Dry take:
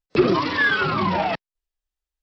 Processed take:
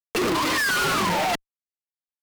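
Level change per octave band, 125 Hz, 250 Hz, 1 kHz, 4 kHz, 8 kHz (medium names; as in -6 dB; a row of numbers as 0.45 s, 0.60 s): -6.0 dB, -5.0 dB, -0.5 dB, +3.0 dB, no reading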